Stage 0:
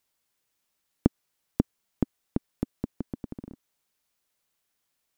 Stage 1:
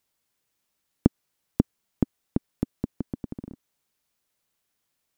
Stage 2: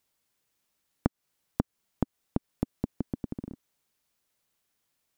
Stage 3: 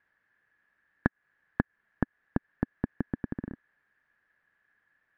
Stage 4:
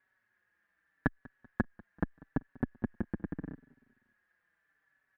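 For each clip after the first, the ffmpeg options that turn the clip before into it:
-af "equalizer=f=130:w=0.37:g=3.5"
-af "acompressor=threshold=-23dB:ratio=6"
-filter_complex "[0:a]lowpass=f=1.7k:t=q:w=16,asplit=2[a][b];[b]asoftclip=type=tanh:threshold=-21dB,volume=-5.5dB[c];[a][c]amix=inputs=2:normalize=0,volume=-2dB"
-filter_complex "[0:a]aecho=1:1:193|386|579:0.0708|0.0319|0.0143,asplit=2[a][b];[b]adelay=4.8,afreqshift=-0.79[c];[a][c]amix=inputs=2:normalize=1"

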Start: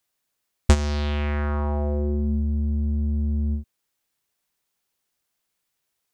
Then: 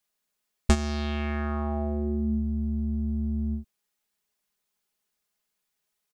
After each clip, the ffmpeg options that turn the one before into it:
-af "aecho=1:1:4.8:0.69,volume=-4.5dB"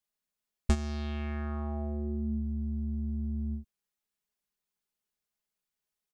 -af "lowshelf=f=210:g=5.5,volume=-9dB"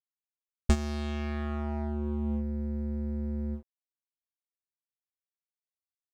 -filter_complex "[0:a]asplit=2[a][b];[b]acrusher=bits=4:mix=0:aa=0.5,volume=-9.5dB[c];[a][c]amix=inputs=2:normalize=0,aeval=exprs='sgn(val(0))*max(abs(val(0))-0.00531,0)':c=same"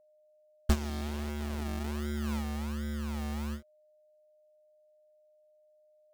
-filter_complex "[0:a]acrossover=split=2500[a][b];[a]acrusher=samples=35:mix=1:aa=0.000001:lfo=1:lforange=21:lforate=1.3[c];[c][b]amix=inputs=2:normalize=0,aeval=exprs='val(0)+0.001*sin(2*PI*610*n/s)':c=same,volume=-2.5dB"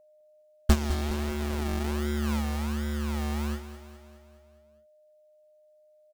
-af "aecho=1:1:207|414|621|828|1035|1242:0.251|0.146|0.0845|0.049|0.0284|0.0165,volume=5.5dB"

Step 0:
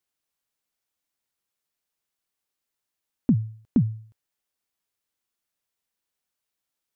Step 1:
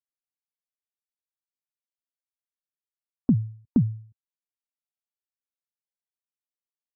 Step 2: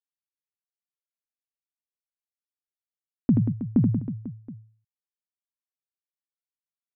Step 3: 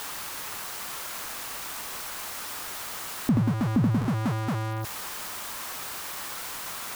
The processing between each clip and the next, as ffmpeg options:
-af "afftdn=nr=25:nf=-50"
-filter_complex "[0:a]agate=range=-33dB:threshold=-47dB:ratio=3:detection=peak,lowpass=f=1k:p=1,asplit=2[a][b];[b]aecho=0:1:80|184|319.2|495|723.4:0.631|0.398|0.251|0.158|0.1[c];[a][c]amix=inputs=2:normalize=0"
-af "aeval=exprs='val(0)+0.5*0.0376*sgn(val(0))':c=same,alimiter=limit=-18.5dB:level=0:latency=1:release=424,equalizer=f=1.1k:w=0.96:g=9,volume=3dB"

